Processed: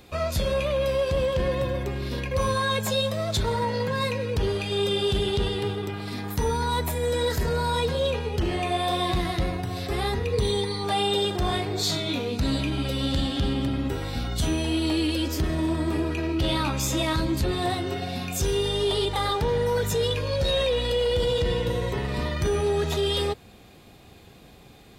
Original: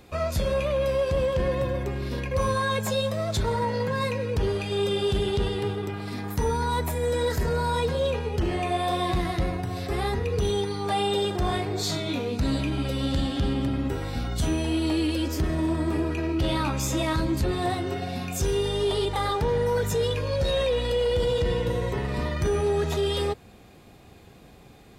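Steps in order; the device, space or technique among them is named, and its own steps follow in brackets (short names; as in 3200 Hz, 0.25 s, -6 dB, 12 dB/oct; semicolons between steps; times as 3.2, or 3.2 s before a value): presence and air boost (bell 3600 Hz +4.5 dB 1 oct; high shelf 11000 Hz +5 dB); 10.33–10.84 ripple EQ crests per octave 0.97, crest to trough 9 dB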